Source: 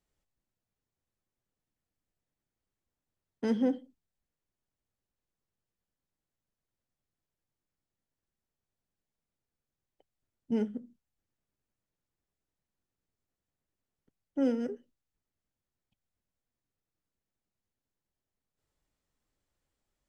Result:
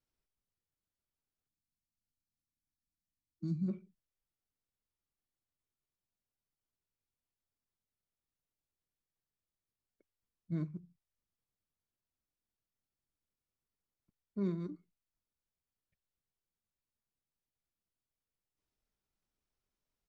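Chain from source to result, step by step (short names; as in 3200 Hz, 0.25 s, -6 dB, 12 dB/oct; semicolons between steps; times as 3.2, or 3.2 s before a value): pitch shift -5.5 st; spectral gain 1.48–3.69, 340–3900 Hz -20 dB; gain -6.5 dB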